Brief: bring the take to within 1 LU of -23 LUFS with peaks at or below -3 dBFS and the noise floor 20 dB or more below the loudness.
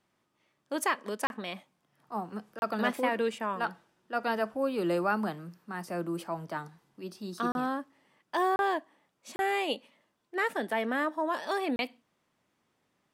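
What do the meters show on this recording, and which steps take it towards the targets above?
dropouts 6; longest dropout 31 ms; loudness -32.5 LUFS; peak -13.5 dBFS; loudness target -23.0 LUFS
-> interpolate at 1.27/2.59/7.52/8.56/9.36/11.76, 31 ms; gain +9.5 dB

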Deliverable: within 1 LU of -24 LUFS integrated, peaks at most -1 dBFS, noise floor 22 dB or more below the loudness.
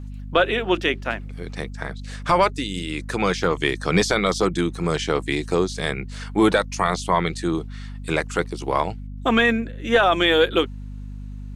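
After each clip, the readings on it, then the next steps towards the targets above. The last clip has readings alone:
hum 50 Hz; harmonics up to 250 Hz; hum level -31 dBFS; loudness -22.0 LUFS; peak -7.0 dBFS; loudness target -24.0 LUFS
-> notches 50/100/150/200/250 Hz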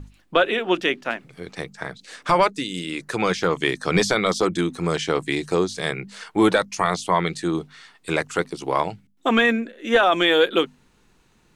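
hum none; loudness -22.0 LUFS; peak -7.0 dBFS; loudness target -24.0 LUFS
-> gain -2 dB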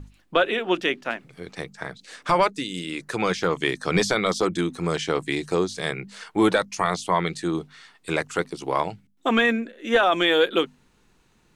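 loudness -24.0 LUFS; peak -9.0 dBFS; noise floor -62 dBFS

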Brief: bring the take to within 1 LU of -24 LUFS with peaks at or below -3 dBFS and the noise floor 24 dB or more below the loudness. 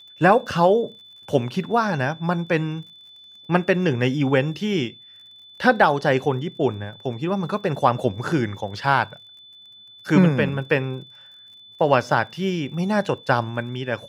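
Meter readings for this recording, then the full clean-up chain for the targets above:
ticks 44/s; steady tone 3500 Hz; tone level -44 dBFS; loudness -22.0 LUFS; peak -3.0 dBFS; loudness target -24.0 LUFS
-> de-click; notch 3500 Hz, Q 30; gain -2 dB

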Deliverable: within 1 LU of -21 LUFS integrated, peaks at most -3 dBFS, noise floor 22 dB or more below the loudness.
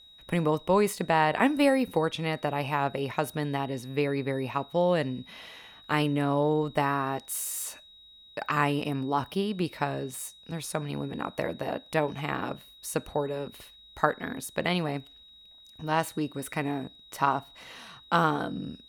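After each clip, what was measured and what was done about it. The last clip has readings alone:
steady tone 3800 Hz; tone level -51 dBFS; loudness -29.0 LUFS; peak -6.0 dBFS; loudness target -21.0 LUFS
-> notch 3800 Hz, Q 30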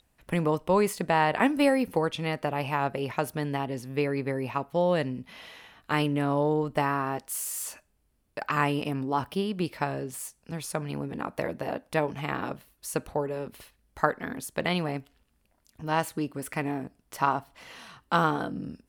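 steady tone none; loudness -29.0 LUFS; peak -6.0 dBFS; loudness target -21.0 LUFS
-> gain +8 dB; limiter -3 dBFS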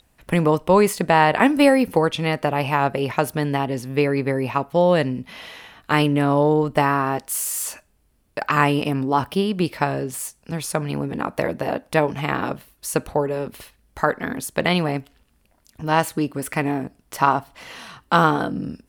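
loudness -21.0 LUFS; peak -3.0 dBFS; noise floor -63 dBFS

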